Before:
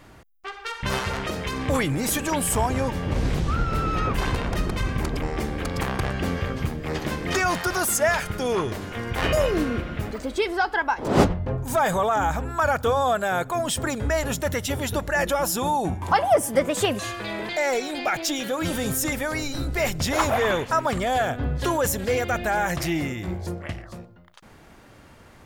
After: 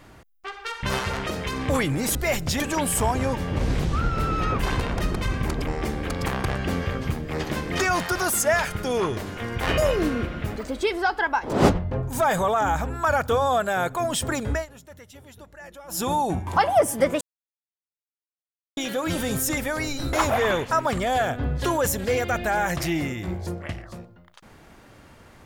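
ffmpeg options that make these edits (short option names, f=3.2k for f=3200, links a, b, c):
-filter_complex "[0:a]asplit=8[a][b][c][d][e][f][g][h];[a]atrim=end=2.152[i];[b]atrim=start=19.678:end=20.132[j];[c]atrim=start=2.148:end=14.21,asetpts=PTS-STARTPTS,afade=t=out:st=11.932:d=0.13:silence=0.1[k];[d]atrim=start=14.21:end=15.43,asetpts=PTS-STARTPTS,volume=-20dB[l];[e]atrim=start=15.43:end=16.76,asetpts=PTS-STARTPTS,afade=t=in:d=0.13:silence=0.1,afade=t=out:st=1.326:d=0.004:c=hsin[m];[f]atrim=start=16.76:end=18.32,asetpts=PTS-STARTPTS,volume=0[n];[g]atrim=start=18.32:end=19.682,asetpts=PTS-STARTPTS,afade=t=in:d=0.004:c=hsin[o];[h]atrim=start=20.128[p];[i][j]acrossfade=d=0.004:c1=hsin:c2=hsin[q];[k][l][m][n][o]concat=n=5:v=0:a=1[r];[q][r]acrossfade=d=0.004:c1=hsin:c2=hsin[s];[s][p]acrossfade=d=0.004:c1=hsin:c2=hsin"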